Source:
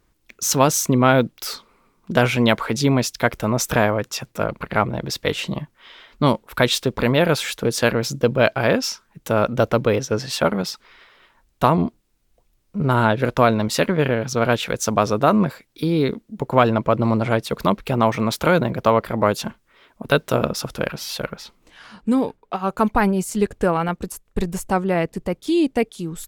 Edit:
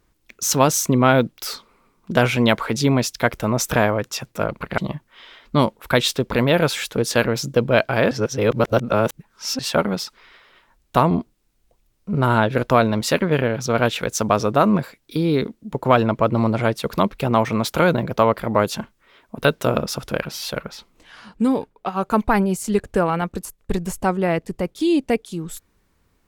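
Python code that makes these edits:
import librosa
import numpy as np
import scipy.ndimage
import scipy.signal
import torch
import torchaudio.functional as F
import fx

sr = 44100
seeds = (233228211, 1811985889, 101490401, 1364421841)

y = fx.edit(x, sr, fx.cut(start_s=4.78, length_s=0.67),
    fx.reverse_span(start_s=8.78, length_s=1.48), tone=tone)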